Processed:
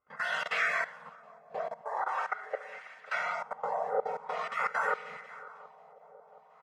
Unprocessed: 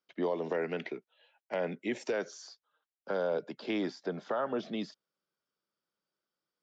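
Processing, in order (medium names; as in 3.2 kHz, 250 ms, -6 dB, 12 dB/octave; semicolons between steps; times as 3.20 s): spectrum inverted on a logarithmic axis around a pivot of 1.8 kHz; comb 1.5 ms, depth 89%; reverberation RT60 0.70 s, pre-delay 4 ms, DRR -10 dB; dynamic bell 4.2 kHz, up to -7 dB, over -45 dBFS, Q 2.4; in parallel at +1 dB: peak limiter -24.5 dBFS, peak gain reduction 9.5 dB; on the sum: spectral gate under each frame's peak -15 dB weak; level held to a coarse grid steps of 19 dB; 1.81–3.15 s: high-pass 410 Hz 12 dB/octave; shuffle delay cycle 721 ms, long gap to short 3:1, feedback 62%, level -21 dB; LFO low-pass sine 0.45 Hz 690–2100 Hz; trim +8.5 dB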